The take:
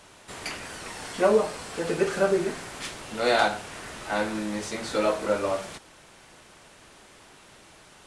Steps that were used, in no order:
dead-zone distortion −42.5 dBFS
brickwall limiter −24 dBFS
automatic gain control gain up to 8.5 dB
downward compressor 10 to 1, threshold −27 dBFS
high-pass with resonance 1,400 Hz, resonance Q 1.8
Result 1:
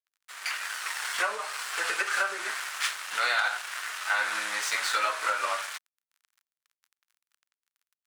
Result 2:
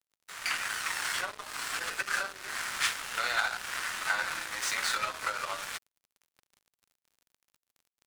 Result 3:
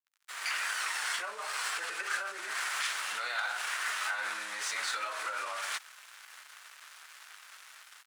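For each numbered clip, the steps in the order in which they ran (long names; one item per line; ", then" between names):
dead-zone distortion, then downward compressor, then high-pass with resonance, then brickwall limiter, then automatic gain control
downward compressor, then brickwall limiter, then high-pass with resonance, then dead-zone distortion, then automatic gain control
downward compressor, then automatic gain control, then dead-zone distortion, then brickwall limiter, then high-pass with resonance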